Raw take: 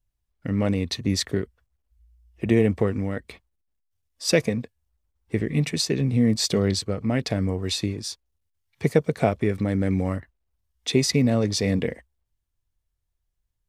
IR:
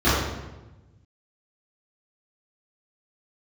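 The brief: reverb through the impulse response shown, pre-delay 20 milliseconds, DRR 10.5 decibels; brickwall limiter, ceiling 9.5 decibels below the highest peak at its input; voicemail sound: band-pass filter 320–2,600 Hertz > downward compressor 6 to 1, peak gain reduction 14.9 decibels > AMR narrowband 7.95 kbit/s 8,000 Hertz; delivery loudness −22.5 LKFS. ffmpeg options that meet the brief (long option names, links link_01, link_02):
-filter_complex "[0:a]alimiter=limit=-13.5dB:level=0:latency=1,asplit=2[link_01][link_02];[1:a]atrim=start_sample=2205,adelay=20[link_03];[link_02][link_03]afir=irnorm=-1:irlink=0,volume=-31.5dB[link_04];[link_01][link_04]amix=inputs=2:normalize=0,highpass=320,lowpass=2600,acompressor=threshold=-38dB:ratio=6,volume=21dB" -ar 8000 -c:a libopencore_amrnb -b:a 7950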